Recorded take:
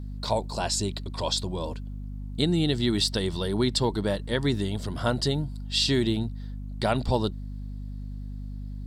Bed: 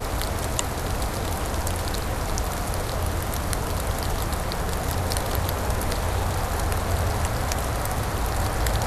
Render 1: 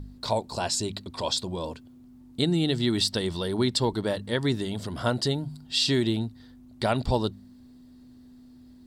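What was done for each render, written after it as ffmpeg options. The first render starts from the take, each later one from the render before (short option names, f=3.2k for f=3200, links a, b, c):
-af "bandreject=f=50:t=h:w=4,bandreject=f=100:t=h:w=4,bandreject=f=150:t=h:w=4,bandreject=f=200:t=h:w=4"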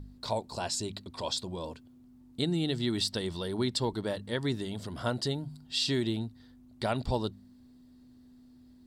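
-af "volume=-5.5dB"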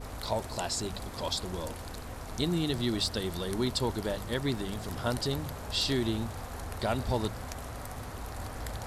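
-filter_complex "[1:a]volume=-14.5dB[a];[0:a][a]amix=inputs=2:normalize=0"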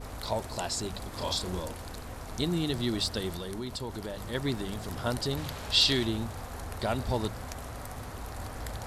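-filter_complex "[0:a]asettb=1/sr,asplit=3[a][b][c];[a]atrim=end=1.094[d];[b]atrim=start=1.09:end=1.6,asetpts=PTS-STARTPTS,afade=t=in:d=0.004:c=qsin,afade=t=out:st=0.506:d=0.004:c=qsin,asplit=2[e][f];[f]adelay=33,volume=-4dB[g];[e][g]amix=inputs=2:normalize=0,atrim=end_sample=22491[h];[c]atrim=start=1.596[i];[d][h]acrossfade=d=0.004:c1=hsin:c2=qsin[j];[j][i]acrossfade=d=0.004:c1=qsin:c2=hsin,asplit=3[k][l][m];[k]afade=t=out:st=3.35:d=0.02[n];[l]acompressor=threshold=-34dB:ratio=3:attack=3.2:release=140:knee=1:detection=peak,afade=t=in:st=3.35:d=0.02,afade=t=out:st=4.33:d=0.02[o];[m]afade=t=in:st=4.33:d=0.02[p];[n][o][p]amix=inputs=3:normalize=0,asettb=1/sr,asplit=3[q][r][s];[q]atrim=end=5.374[t];[r]atrim=start=5.37:end=6.05,asetpts=PTS-STARTPTS,afade=t=in:d=0.004:c=qsin,afade=t=out:st=0.676:d=0.004:c=qsin,equalizer=f=3.4k:w=0.7:g=8.5[u];[s]atrim=start=6.046[v];[t][u]acrossfade=d=0.004:c1=hsin:c2=qsin[w];[w][v]acrossfade=d=0.004:c1=qsin:c2=hsin"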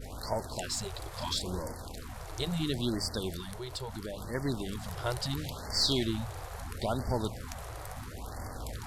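-af "aeval=exprs='if(lt(val(0),0),0.708*val(0),val(0))':c=same,afftfilt=real='re*(1-between(b*sr/1024,200*pow(3200/200,0.5+0.5*sin(2*PI*0.74*pts/sr))/1.41,200*pow(3200/200,0.5+0.5*sin(2*PI*0.74*pts/sr))*1.41))':imag='im*(1-between(b*sr/1024,200*pow(3200/200,0.5+0.5*sin(2*PI*0.74*pts/sr))/1.41,200*pow(3200/200,0.5+0.5*sin(2*PI*0.74*pts/sr))*1.41))':win_size=1024:overlap=0.75"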